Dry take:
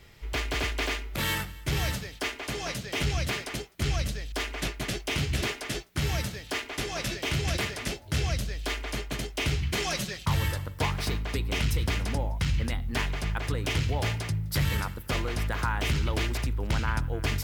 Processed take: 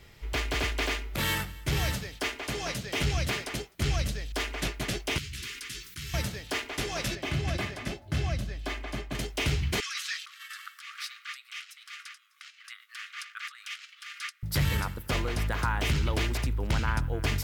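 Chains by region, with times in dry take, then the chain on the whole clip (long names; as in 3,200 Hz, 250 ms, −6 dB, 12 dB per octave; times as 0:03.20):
0:05.18–0:06.14: Butterworth band-reject 690 Hz, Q 0.98 + guitar amp tone stack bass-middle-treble 5-5-5 + envelope flattener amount 70%
0:07.15–0:09.15: high-shelf EQ 3,500 Hz −9 dB + notch comb filter 470 Hz
0:09.80–0:14.43: compressor whose output falls as the input rises −34 dBFS + linear-phase brick-wall high-pass 1,100 Hz + high-shelf EQ 11,000 Hz −10.5 dB
whole clip: no processing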